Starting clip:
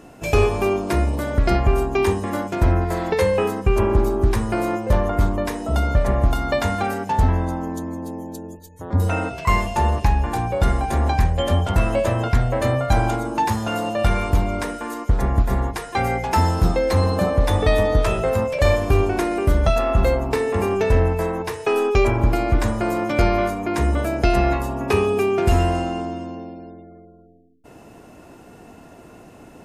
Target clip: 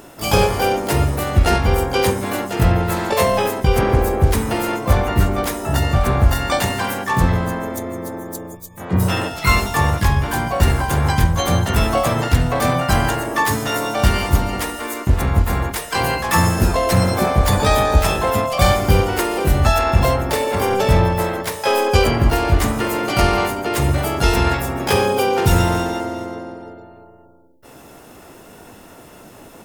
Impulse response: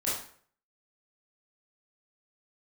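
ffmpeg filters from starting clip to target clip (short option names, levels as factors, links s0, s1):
-filter_complex "[0:a]crystalizer=i=2:c=0,asplit=4[s0][s1][s2][s3];[s1]asetrate=55563,aresample=44100,atempo=0.793701,volume=0.501[s4];[s2]asetrate=58866,aresample=44100,atempo=0.749154,volume=0.447[s5];[s3]asetrate=88200,aresample=44100,atempo=0.5,volume=0.708[s6];[s0][s4][s5][s6]amix=inputs=4:normalize=0,volume=0.891"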